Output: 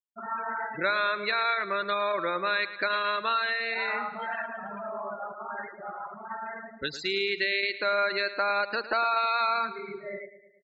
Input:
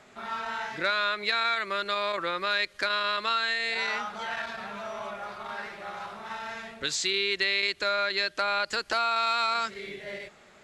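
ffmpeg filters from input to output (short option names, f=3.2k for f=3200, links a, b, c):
-filter_complex "[0:a]lowpass=f=2.1k:p=1,afftfilt=real='re*gte(hypot(re,im),0.0251)':imag='im*gte(hypot(re,im),0.0251)':win_size=1024:overlap=0.75,asplit=2[a][b];[b]aecho=0:1:109|218|327|436|545:0.2|0.108|0.0582|0.0314|0.017[c];[a][c]amix=inputs=2:normalize=0,volume=2.5dB"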